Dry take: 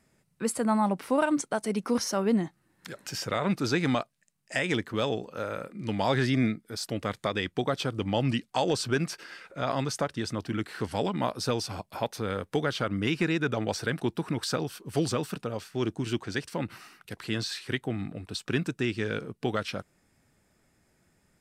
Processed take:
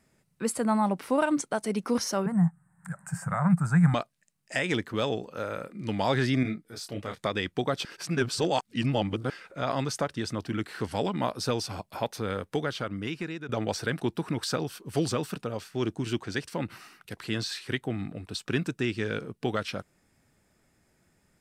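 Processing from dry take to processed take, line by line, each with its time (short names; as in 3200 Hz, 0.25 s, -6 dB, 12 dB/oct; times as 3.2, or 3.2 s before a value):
2.26–3.94 EQ curve 100 Hz 0 dB, 170 Hz +15 dB, 250 Hz -14 dB, 400 Hz -21 dB, 750 Hz +2 dB, 1600 Hz +2 dB, 3300 Hz -27 dB, 5700 Hz -19 dB, 8300 Hz +6 dB, 12000 Hz -9 dB
6.43–7.23 detuned doubles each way 32 cents
7.85–9.3 reverse
12.32–13.49 fade out linear, to -12.5 dB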